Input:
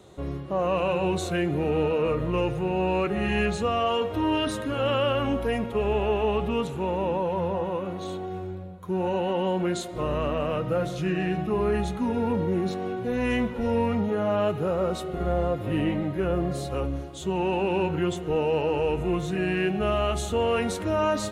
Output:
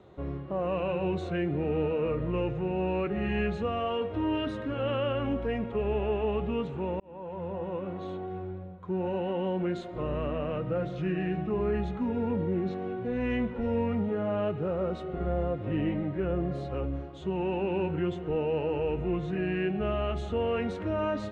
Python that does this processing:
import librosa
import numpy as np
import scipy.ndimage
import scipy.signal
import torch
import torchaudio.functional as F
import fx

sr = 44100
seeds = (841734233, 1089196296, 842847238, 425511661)

y = fx.edit(x, sr, fx.fade_in_span(start_s=7.0, length_s=0.77), tone=tone)
y = fx.dynamic_eq(y, sr, hz=1000.0, q=1.0, threshold_db=-37.0, ratio=4.0, max_db=-5)
y = scipy.signal.sosfilt(scipy.signal.butter(2, 2400.0, 'lowpass', fs=sr, output='sos'), y)
y = F.gain(torch.from_numpy(y), -3.0).numpy()